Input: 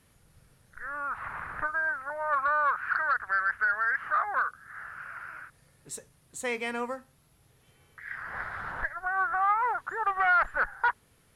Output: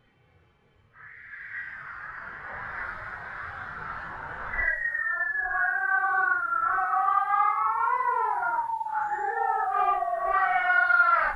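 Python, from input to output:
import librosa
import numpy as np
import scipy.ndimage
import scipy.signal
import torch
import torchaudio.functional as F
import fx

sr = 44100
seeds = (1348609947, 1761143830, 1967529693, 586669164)

y = fx.env_lowpass(x, sr, base_hz=2500.0, full_db=-27.5)
y = fx.spec_paint(y, sr, seeds[0], shape='fall', start_s=8.82, length_s=1.38, low_hz=670.0, high_hz=2000.0, level_db=-30.0)
y = fx.paulstretch(y, sr, seeds[1], factor=4.2, window_s=0.05, from_s=7.74)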